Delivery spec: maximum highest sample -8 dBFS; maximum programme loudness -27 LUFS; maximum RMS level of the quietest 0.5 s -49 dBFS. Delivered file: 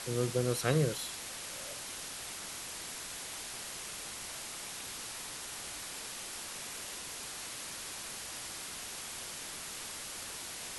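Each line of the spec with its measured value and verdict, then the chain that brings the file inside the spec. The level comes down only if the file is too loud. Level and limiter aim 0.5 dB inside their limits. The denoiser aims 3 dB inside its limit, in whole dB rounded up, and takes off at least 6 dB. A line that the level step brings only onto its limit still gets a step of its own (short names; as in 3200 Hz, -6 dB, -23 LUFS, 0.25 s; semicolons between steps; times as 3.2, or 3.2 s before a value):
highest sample -15.5 dBFS: OK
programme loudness -38.0 LUFS: OK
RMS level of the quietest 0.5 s -43 dBFS: fail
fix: denoiser 9 dB, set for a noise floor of -43 dBFS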